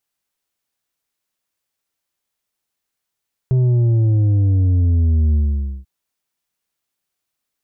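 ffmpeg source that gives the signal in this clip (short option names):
-f lavfi -i "aevalsrc='0.237*clip((2.34-t)/0.51,0,1)*tanh(2*sin(2*PI*130*2.34/log(65/130)*(exp(log(65/130)*t/2.34)-1)))/tanh(2)':d=2.34:s=44100"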